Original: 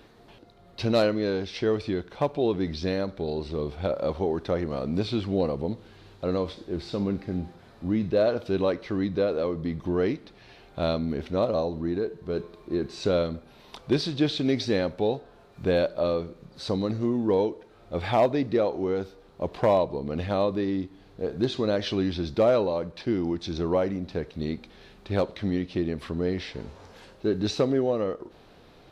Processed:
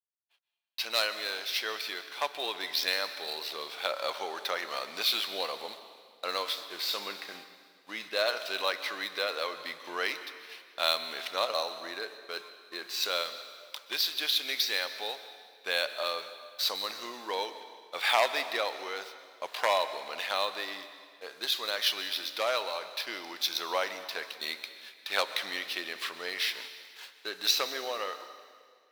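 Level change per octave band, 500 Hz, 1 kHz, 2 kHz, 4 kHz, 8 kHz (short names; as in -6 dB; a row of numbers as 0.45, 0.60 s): -11.0 dB, -0.5 dB, +6.5 dB, +8.5 dB, n/a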